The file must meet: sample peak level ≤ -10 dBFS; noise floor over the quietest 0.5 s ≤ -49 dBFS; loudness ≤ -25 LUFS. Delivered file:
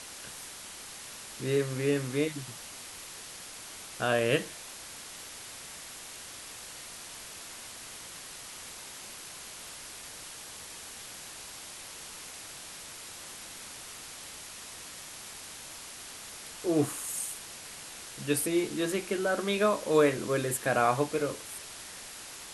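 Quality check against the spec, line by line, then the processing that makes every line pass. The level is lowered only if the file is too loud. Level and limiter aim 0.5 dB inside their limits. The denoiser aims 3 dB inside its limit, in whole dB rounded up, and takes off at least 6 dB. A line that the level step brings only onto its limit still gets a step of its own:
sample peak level -12.0 dBFS: OK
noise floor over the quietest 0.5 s -45 dBFS: fail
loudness -34.0 LUFS: OK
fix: denoiser 7 dB, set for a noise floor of -45 dBFS

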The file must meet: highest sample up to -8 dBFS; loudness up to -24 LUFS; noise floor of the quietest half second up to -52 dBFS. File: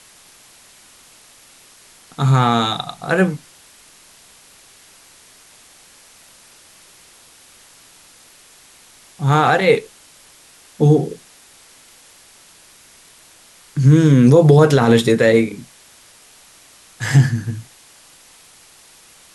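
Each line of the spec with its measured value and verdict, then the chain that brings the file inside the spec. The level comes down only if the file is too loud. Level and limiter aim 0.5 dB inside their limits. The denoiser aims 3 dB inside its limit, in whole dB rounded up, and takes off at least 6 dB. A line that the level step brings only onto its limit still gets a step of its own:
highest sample -2.0 dBFS: fail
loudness -15.0 LUFS: fail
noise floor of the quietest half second -48 dBFS: fail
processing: gain -9.5 dB

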